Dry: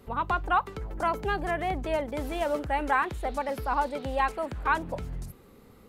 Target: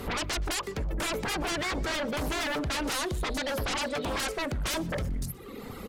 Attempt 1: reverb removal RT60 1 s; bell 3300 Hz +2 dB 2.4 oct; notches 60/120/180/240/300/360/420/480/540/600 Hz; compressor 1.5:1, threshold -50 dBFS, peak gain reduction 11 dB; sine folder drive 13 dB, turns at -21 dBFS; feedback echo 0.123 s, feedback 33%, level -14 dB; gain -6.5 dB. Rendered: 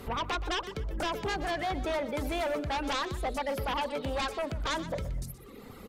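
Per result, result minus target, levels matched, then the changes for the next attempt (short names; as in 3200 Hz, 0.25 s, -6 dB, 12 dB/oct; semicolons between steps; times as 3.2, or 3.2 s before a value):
sine folder: distortion -11 dB; echo-to-direct +8.5 dB
change: sine folder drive 20 dB, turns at -21 dBFS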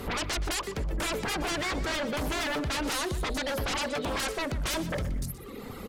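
echo-to-direct +8.5 dB
change: feedback echo 0.123 s, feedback 33%, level -22.5 dB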